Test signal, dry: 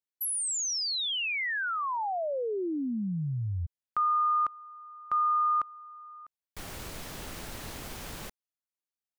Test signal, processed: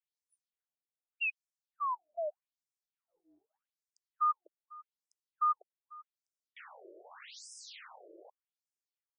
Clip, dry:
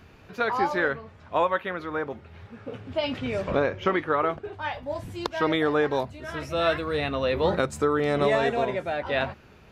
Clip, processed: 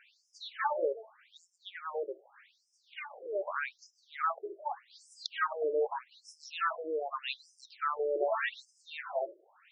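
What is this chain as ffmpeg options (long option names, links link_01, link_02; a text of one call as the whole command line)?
ffmpeg -i in.wav -af "asubboost=boost=11.5:cutoff=140,afftfilt=real='re*between(b*sr/1024,440*pow(7100/440,0.5+0.5*sin(2*PI*0.83*pts/sr))/1.41,440*pow(7100/440,0.5+0.5*sin(2*PI*0.83*pts/sr))*1.41)':imag='im*between(b*sr/1024,440*pow(7100/440,0.5+0.5*sin(2*PI*0.83*pts/sr))/1.41,440*pow(7100/440,0.5+0.5*sin(2*PI*0.83*pts/sr))*1.41)':win_size=1024:overlap=0.75" out.wav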